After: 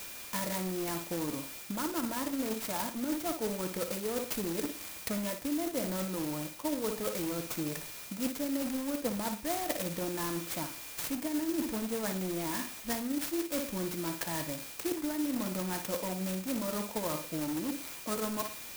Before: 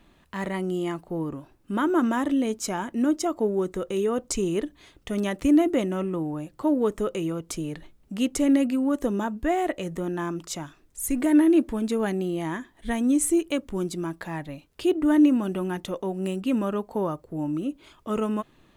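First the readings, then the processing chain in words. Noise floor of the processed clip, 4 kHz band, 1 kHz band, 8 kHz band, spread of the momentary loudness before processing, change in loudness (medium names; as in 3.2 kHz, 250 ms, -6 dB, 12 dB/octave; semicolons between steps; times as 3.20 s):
-45 dBFS, -0.5 dB, -7.0 dB, -2.5 dB, 13 LU, -8.5 dB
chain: bass shelf 250 Hz -11 dB; comb of notches 390 Hz; whistle 2.4 kHz -49 dBFS; flutter echo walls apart 10.1 m, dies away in 0.36 s; in parallel at -8 dB: integer overflow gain 29 dB; on the sum: FFT filter 1.5 kHz 0 dB, 2.4 kHz +6 dB, 4.8 kHz -9 dB, 9.1 kHz -2 dB; reverse; compression 6:1, threshold -32 dBFS, peak gain reduction 13 dB; reverse; transient shaper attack +5 dB, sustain 0 dB; sampling jitter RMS 0.11 ms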